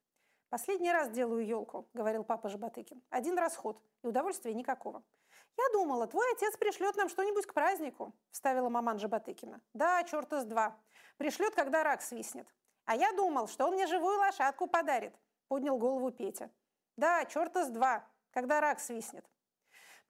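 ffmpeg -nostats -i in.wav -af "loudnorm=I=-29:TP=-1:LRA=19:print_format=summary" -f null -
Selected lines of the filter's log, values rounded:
Input Integrated:    -34.3 LUFS
Input True Peak:     -18.2 dBTP
Input LRA:             3.8 LU
Input Threshold:     -45.0 LUFS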